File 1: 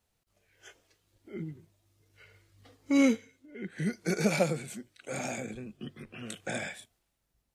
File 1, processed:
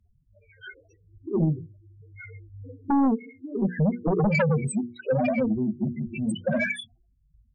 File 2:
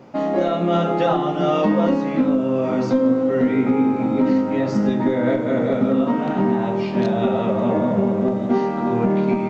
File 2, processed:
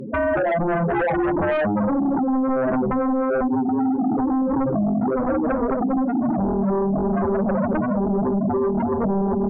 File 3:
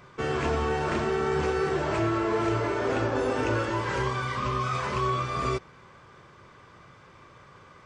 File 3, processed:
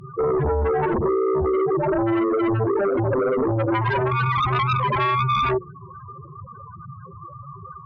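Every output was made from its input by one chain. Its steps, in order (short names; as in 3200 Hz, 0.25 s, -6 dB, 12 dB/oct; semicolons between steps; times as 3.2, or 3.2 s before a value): loudest bins only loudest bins 4; compressor 16:1, threshold -32 dBFS; sine folder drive 9 dB, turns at -24.5 dBFS; notches 60/120/180/240/300/360/420/480 Hz; gain +7 dB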